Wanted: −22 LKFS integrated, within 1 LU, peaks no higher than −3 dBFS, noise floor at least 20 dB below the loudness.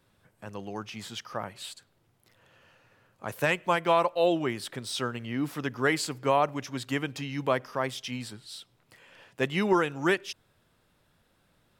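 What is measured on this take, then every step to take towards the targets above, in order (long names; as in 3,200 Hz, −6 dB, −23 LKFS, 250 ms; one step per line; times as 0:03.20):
integrated loudness −29.5 LKFS; sample peak −12.0 dBFS; target loudness −22.0 LKFS
→ level +7.5 dB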